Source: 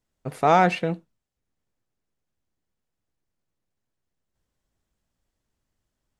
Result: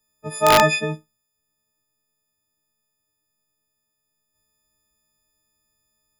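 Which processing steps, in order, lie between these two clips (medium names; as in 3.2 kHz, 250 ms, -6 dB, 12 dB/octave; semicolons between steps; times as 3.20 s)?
partials quantised in pitch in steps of 6 st; integer overflow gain 4.5 dB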